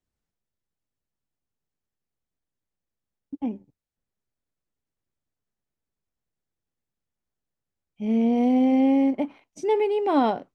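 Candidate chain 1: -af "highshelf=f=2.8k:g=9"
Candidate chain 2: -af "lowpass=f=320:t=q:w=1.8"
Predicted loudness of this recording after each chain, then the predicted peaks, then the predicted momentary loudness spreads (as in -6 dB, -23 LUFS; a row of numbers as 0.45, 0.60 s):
-23.0, -19.5 LUFS; -9.5, -9.5 dBFS; 13, 15 LU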